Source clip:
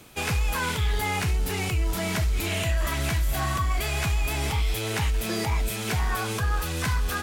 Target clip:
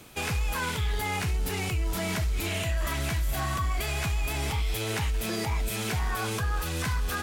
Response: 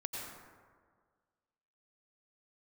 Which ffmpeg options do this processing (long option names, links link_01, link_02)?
-af "alimiter=limit=-21.5dB:level=0:latency=1"